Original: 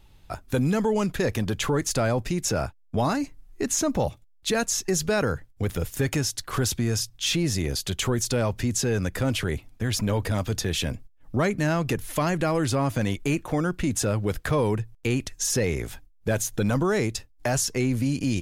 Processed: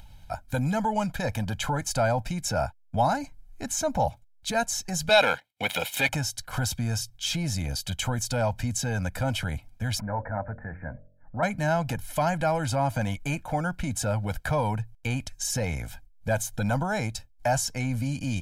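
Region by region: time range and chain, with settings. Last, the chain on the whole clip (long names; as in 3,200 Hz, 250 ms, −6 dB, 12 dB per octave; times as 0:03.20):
0:05.09–0:06.09: high-pass filter 340 Hz + leveller curve on the samples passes 2 + flat-topped bell 2,900 Hz +11.5 dB 1.2 octaves
0:10.00–0:11.43: Butterworth low-pass 2,000 Hz 96 dB per octave + low-shelf EQ 270 Hz −7 dB + hum removal 45.64 Hz, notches 14
whole clip: upward compression, threshold −38 dBFS; dynamic equaliser 860 Hz, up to +7 dB, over −40 dBFS, Q 1.3; comb filter 1.3 ms, depth 87%; level −6 dB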